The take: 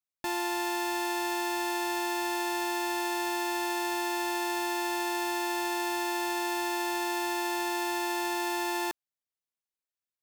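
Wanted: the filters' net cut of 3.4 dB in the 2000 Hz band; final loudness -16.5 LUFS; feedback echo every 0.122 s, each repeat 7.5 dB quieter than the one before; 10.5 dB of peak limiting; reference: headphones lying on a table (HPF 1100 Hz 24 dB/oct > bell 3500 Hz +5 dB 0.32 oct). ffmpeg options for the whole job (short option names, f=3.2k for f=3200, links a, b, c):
-af "equalizer=f=2k:t=o:g=-4.5,alimiter=level_in=10dB:limit=-24dB:level=0:latency=1,volume=-10dB,highpass=f=1.1k:w=0.5412,highpass=f=1.1k:w=1.3066,equalizer=f=3.5k:t=o:w=0.32:g=5,aecho=1:1:122|244|366|488|610:0.422|0.177|0.0744|0.0312|0.0131,volume=27dB"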